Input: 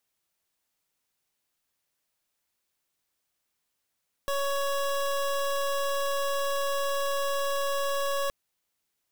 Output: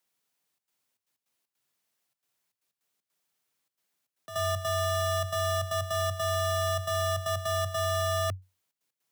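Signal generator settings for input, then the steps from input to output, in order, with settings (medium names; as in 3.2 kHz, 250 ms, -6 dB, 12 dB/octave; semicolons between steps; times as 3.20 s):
pulse 558 Hz, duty 25% -28 dBFS 4.02 s
trance gate "xxxxxx.xxx.x.xx." 155 bpm -12 dB; frequency shift +93 Hz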